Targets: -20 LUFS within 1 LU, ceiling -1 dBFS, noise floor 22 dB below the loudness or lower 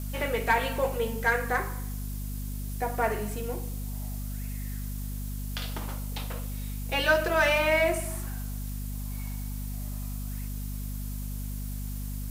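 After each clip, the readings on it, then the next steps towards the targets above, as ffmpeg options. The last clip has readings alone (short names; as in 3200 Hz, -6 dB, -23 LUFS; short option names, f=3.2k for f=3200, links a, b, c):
hum 50 Hz; harmonics up to 250 Hz; hum level -32 dBFS; noise floor -34 dBFS; noise floor target -53 dBFS; loudness -30.5 LUFS; peak -12.0 dBFS; loudness target -20.0 LUFS
-> -af "bandreject=f=50:t=h:w=4,bandreject=f=100:t=h:w=4,bandreject=f=150:t=h:w=4,bandreject=f=200:t=h:w=4,bandreject=f=250:t=h:w=4"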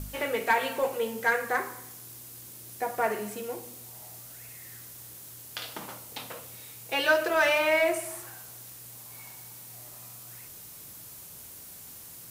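hum none; noise floor -46 dBFS; noise floor target -51 dBFS
-> -af "afftdn=nr=6:nf=-46"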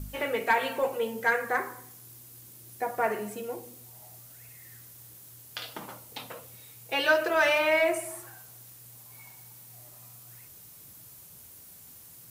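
noise floor -51 dBFS; loudness -28.0 LUFS; peak -11.5 dBFS; loudness target -20.0 LUFS
-> -af "volume=8dB"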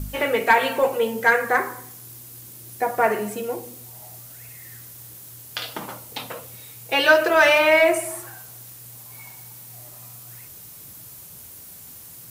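loudness -20.0 LUFS; peak -3.5 dBFS; noise floor -43 dBFS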